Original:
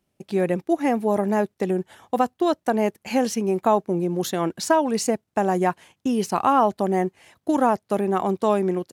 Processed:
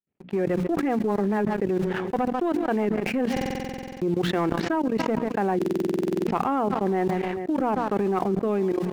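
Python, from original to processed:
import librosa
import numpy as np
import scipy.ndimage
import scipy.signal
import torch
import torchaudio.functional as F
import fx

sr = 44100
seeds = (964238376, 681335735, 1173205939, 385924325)

p1 = scipy.signal.sosfilt(scipy.signal.butter(4, 2500.0, 'lowpass', fs=sr, output='sos'), x)
p2 = fx.low_shelf(p1, sr, hz=66.0, db=-8.0)
p3 = fx.hum_notches(p2, sr, base_hz=60, count=5)
p4 = np.where(np.abs(p3) >= 10.0 ** (-34.5 / 20.0), p3, 0.0)
p5 = p3 + F.gain(torch.from_numpy(p4), -4.0).numpy()
p6 = fx.peak_eq(p5, sr, hz=610.0, db=-8.0, octaves=0.22)
p7 = fx.echo_feedback(p6, sr, ms=143, feedback_pct=51, wet_db=-22.5)
p8 = fx.rotary_switch(p7, sr, hz=5.0, then_hz=1.1, switch_at_s=2.05)
p9 = fx.leveller(p8, sr, passes=1)
p10 = fx.level_steps(p9, sr, step_db=20)
p11 = fx.buffer_glitch(p10, sr, at_s=(3.32, 5.57), block=2048, repeats=14)
p12 = fx.sustainer(p11, sr, db_per_s=22.0)
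y = F.gain(torch.from_numpy(p12), -3.5).numpy()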